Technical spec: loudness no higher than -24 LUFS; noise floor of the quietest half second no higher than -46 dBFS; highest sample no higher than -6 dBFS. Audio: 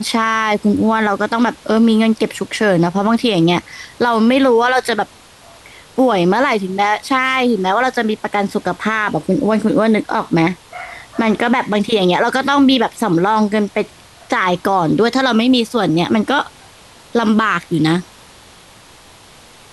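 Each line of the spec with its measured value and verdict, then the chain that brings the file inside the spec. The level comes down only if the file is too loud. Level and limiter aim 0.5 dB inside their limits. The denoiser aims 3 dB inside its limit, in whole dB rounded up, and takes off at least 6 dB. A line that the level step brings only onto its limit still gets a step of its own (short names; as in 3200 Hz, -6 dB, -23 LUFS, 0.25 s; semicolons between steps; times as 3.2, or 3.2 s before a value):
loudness -15.5 LUFS: fail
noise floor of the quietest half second -43 dBFS: fail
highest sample -4.5 dBFS: fail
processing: gain -9 dB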